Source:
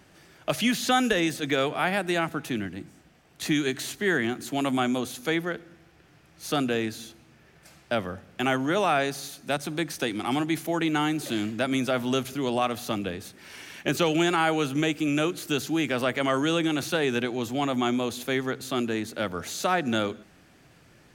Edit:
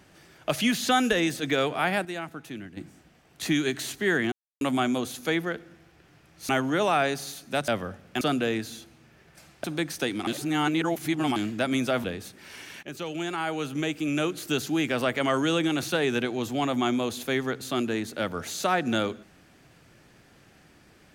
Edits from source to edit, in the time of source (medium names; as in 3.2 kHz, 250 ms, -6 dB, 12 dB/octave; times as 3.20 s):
2.05–2.77 s: gain -8.5 dB
4.32–4.61 s: mute
6.49–7.92 s: swap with 8.45–9.64 s
10.27–11.36 s: reverse
12.04–13.04 s: delete
13.83–15.55 s: fade in, from -14.5 dB